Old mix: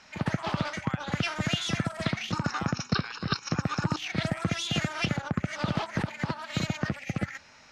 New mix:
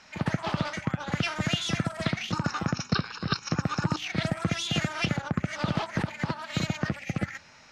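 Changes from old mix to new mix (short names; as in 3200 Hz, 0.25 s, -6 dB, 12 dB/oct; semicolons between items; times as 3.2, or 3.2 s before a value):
speech -3.5 dB; background: send +8.5 dB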